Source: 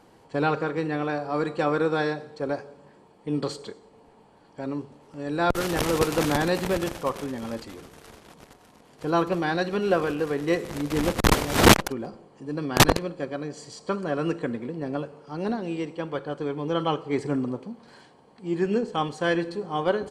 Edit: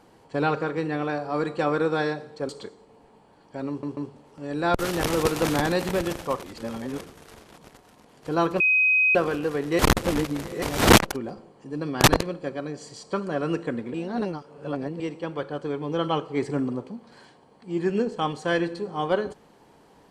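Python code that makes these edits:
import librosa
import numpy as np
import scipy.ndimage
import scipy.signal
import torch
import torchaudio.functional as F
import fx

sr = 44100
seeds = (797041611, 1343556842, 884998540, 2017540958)

y = fx.edit(x, sr, fx.cut(start_s=2.49, length_s=1.04),
    fx.stutter(start_s=4.73, slice_s=0.14, count=3),
    fx.reverse_span(start_s=7.19, length_s=0.58),
    fx.bleep(start_s=9.36, length_s=0.55, hz=2520.0, db=-16.5),
    fx.reverse_span(start_s=10.55, length_s=0.83),
    fx.reverse_span(start_s=14.7, length_s=1.06), tone=tone)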